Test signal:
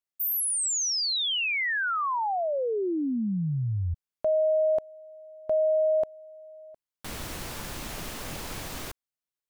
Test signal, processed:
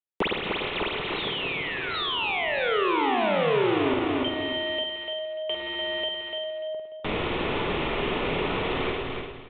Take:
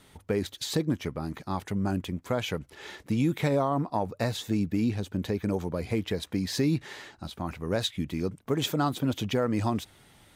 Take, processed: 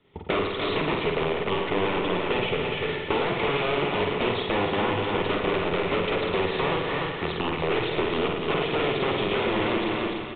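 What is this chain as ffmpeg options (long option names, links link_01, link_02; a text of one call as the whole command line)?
ffmpeg -i in.wav -filter_complex "[0:a]aeval=exprs='(mod(21.1*val(0)+1,2)-1)/21.1':channel_layout=same,asplit=2[link_01][link_02];[link_02]aecho=0:1:294|588|882:0.447|0.121|0.0326[link_03];[link_01][link_03]amix=inputs=2:normalize=0,aresample=8000,aresample=44100,equalizer=frequency=160:width_type=o:width=0.67:gain=4,equalizer=frequency=400:width_type=o:width=0.67:gain=11,equalizer=frequency=1000:width_type=o:width=0.67:gain=3,equalizer=frequency=2500:width_type=o:width=0.67:gain=5,agate=range=-19dB:threshold=-45dB:ratio=3:release=339:detection=rms,bandreject=frequency=1600:width=11,asplit=2[link_04][link_05];[link_05]aecho=0:1:50|107.5|173.6|249.7|337.1:0.631|0.398|0.251|0.158|0.1[link_06];[link_04][link_06]amix=inputs=2:normalize=0,acrossover=split=270|800[link_07][link_08][link_09];[link_07]acompressor=threshold=-40dB:ratio=4[link_10];[link_08]acompressor=threshold=-33dB:ratio=4[link_11];[link_09]acompressor=threshold=-36dB:ratio=4[link_12];[link_10][link_11][link_12]amix=inputs=3:normalize=0,volume=7dB" out.wav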